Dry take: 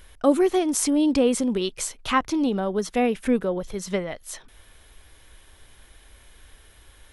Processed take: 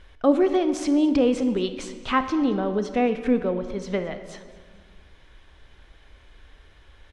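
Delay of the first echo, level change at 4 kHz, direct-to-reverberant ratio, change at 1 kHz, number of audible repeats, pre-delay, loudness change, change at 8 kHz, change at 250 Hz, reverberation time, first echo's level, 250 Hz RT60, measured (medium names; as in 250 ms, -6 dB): 223 ms, -3.0 dB, 9.5 dB, 0.0 dB, 2, 26 ms, 0.0 dB, -13.0 dB, +0.5 dB, 1.7 s, -21.0 dB, 2.1 s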